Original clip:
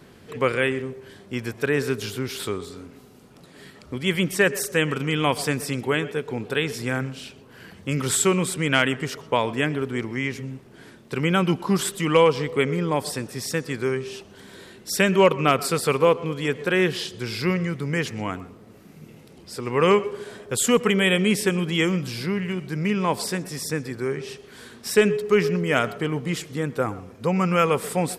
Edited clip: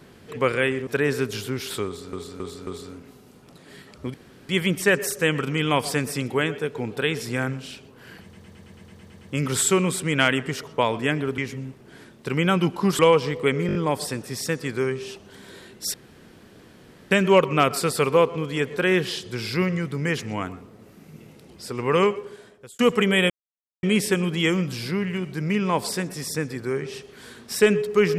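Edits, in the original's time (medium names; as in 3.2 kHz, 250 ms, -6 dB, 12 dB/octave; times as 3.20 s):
0.87–1.56 s: delete
2.55–2.82 s: loop, 4 plays
4.02 s: insert room tone 0.35 s
7.75 s: stutter 0.11 s, 10 plays
9.92–10.24 s: delete
11.85–12.12 s: delete
12.80 s: stutter 0.02 s, 5 plays
14.99 s: insert room tone 1.17 s
19.72–20.67 s: fade out
21.18 s: insert silence 0.53 s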